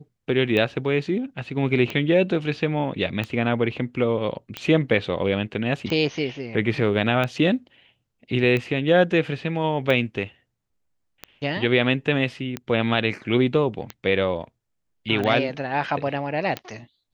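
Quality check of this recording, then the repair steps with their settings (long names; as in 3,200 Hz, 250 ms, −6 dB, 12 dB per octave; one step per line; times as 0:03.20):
scratch tick 45 rpm −14 dBFS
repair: click removal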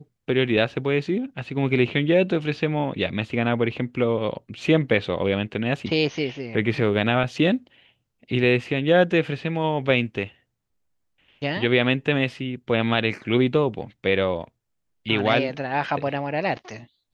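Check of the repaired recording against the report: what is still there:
none of them is left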